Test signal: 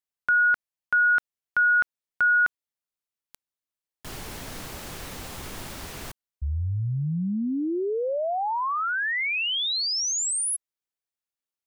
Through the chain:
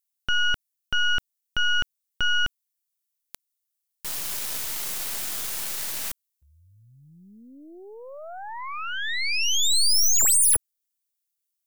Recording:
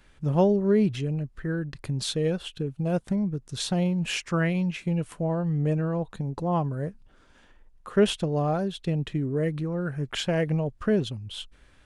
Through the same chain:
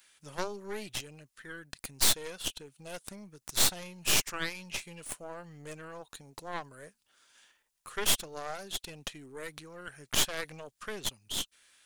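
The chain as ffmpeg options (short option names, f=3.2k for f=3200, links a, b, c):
-af "aderivative,aeval=exprs='0.112*(cos(1*acos(clip(val(0)/0.112,-1,1)))-cos(1*PI/2))+0.00794*(cos(5*acos(clip(val(0)/0.112,-1,1)))-cos(5*PI/2))+0.0178*(cos(6*acos(clip(val(0)/0.112,-1,1)))-cos(6*PI/2))+0.0501*(cos(8*acos(clip(val(0)/0.112,-1,1)))-cos(8*PI/2))':c=same,volume=5.5dB"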